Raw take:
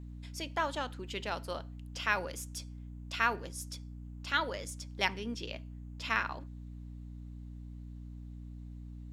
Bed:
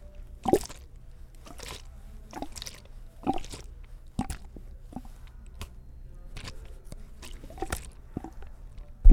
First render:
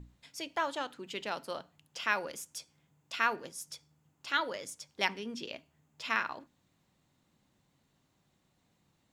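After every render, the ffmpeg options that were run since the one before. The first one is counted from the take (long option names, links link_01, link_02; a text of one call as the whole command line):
ffmpeg -i in.wav -af "bandreject=frequency=60:width_type=h:width=6,bandreject=frequency=120:width_type=h:width=6,bandreject=frequency=180:width_type=h:width=6,bandreject=frequency=240:width_type=h:width=6,bandreject=frequency=300:width_type=h:width=6" out.wav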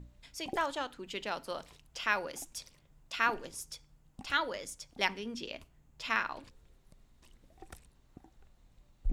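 ffmpeg -i in.wav -i bed.wav -filter_complex "[1:a]volume=-18dB[link_01];[0:a][link_01]amix=inputs=2:normalize=0" out.wav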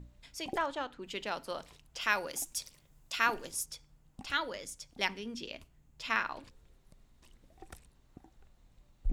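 ffmpeg -i in.wav -filter_complex "[0:a]asettb=1/sr,asplit=3[link_01][link_02][link_03];[link_01]atrim=end=0.584[link_04];[link_02]atrim=start=0.58:end=1.02,asetpts=PTS-STARTPTS,afade=type=in:duration=0.004:curve=qsin,afade=type=out:start_time=0.436:duration=0.004:curve=qsin,lowpass=frequency=2900:poles=1[link_05];[link_03]atrim=start=1.016[link_06];[link_04][link_05]acrossfade=duration=0.004:curve1=hsin:curve2=qsin[link_07];[link_07][link_06]acrossfade=duration=0.004:curve1=qsin:curve2=hsin,asettb=1/sr,asplit=3[link_08][link_09][link_10];[link_08]atrim=end=2.014[link_11];[link_09]atrim=start=2.01:end=3.66,asetpts=PTS-STARTPTS,afade=type=in:duration=0.004:curve=qsin,afade=type=out:start_time=1.646:duration=0.004:curve=qsin,aemphasis=mode=production:type=cd[link_12];[link_10]atrim=start=3.656[link_13];[link_11][link_12]acrossfade=duration=0.004:curve1=hsin:curve2=qsin[link_14];[link_14][link_13]acrossfade=duration=0.004:curve1=qsin:curve2=hsin,asettb=1/sr,asplit=3[link_15][link_16][link_17];[link_15]atrim=end=4.274[link_18];[link_16]atrim=start=4.27:end=6.1,asetpts=PTS-STARTPTS,afade=type=in:duration=0.004:curve=qsin,afade=type=out:start_time=1.826:duration=0.004:curve=qsin,equalizer=frequency=840:width_type=o:width=2.6:gain=-3[link_19];[link_17]atrim=start=6.096[link_20];[link_18][link_19]acrossfade=duration=0.004:curve1=hsin:curve2=qsin[link_21];[link_21][link_20]acrossfade=duration=0.004:curve1=qsin:curve2=hsin" out.wav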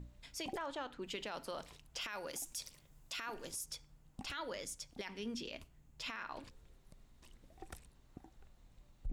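ffmpeg -i in.wav -af "acompressor=threshold=-34dB:ratio=6,alimiter=level_in=9dB:limit=-24dB:level=0:latency=1:release=10,volume=-9dB" out.wav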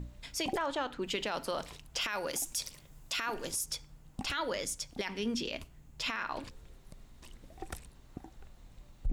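ffmpeg -i in.wav -af "volume=8.5dB" out.wav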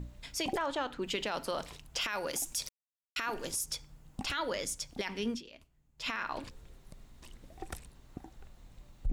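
ffmpeg -i in.wav -filter_complex "[0:a]asplit=5[link_01][link_02][link_03][link_04][link_05];[link_01]atrim=end=2.69,asetpts=PTS-STARTPTS,afade=type=out:start_time=2.686:duration=0.004:curve=hsin[link_06];[link_02]atrim=start=2.69:end=3.16,asetpts=PTS-STARTPTS,volume=0[link_07];[link_03]atrim=start=3.16:end=5.42,asetpts=PTS-STARTPTS,afade=type=in:duration=0.004:curve=hsin,afade=type=out:start_time=2.14:duration=0.12:silence=0.177828[link_08];[link_04]atrim=start=5.42:end=5.97,asetpts=PTS-STARTPTS,volume=-15dB[link_09];[link_05]atrim=start=5.97,asetpts=PTS-STARTPTS,afade=type=in:duration=0.12:silence=0.177828[link_10];[link_06][link_07][link_08][link_09][link_10]concat=n=5:v=0:a=1" out.wav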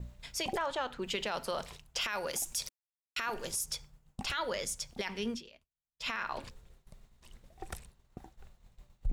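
ffmpeg -i in.wav -af "agate=range=-33dB:threshold=-46dB:ratio=3:detection=peak,equalizer=frequency=290:width_type=o:width=0.22:gain=-14" out.wav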